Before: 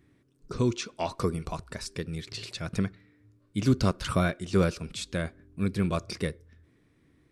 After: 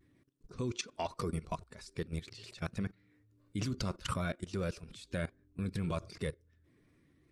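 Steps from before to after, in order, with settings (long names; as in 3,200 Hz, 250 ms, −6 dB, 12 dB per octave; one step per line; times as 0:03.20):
spectral magnitudes quantised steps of 15 dB
pitch vibrato 0.45 Hz 25 cents
output level in coarse steps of 17 dB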